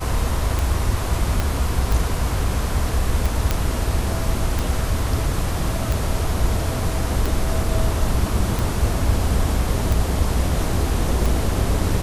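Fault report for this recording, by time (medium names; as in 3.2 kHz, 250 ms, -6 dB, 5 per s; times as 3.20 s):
tick 45 rpm
1.40 s: pop -8 dBFS
3.51 s: pop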